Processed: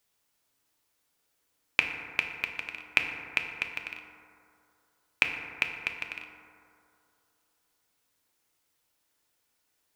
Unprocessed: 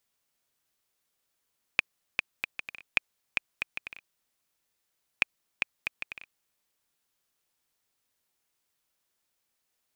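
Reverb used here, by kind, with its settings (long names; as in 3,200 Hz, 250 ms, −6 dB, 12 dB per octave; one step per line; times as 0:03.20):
feedback delay network reverb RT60 2.6 s, low-frequency decay 0.85×, high-frequency decay 0.3×, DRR 2.5 dB
level +2.5 dB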